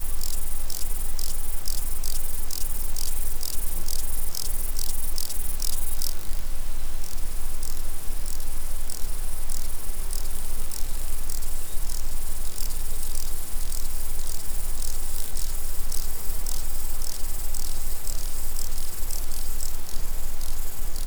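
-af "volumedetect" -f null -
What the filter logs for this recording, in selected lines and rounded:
mean_volume: -18.4 dB
max_volume: -6.6 dB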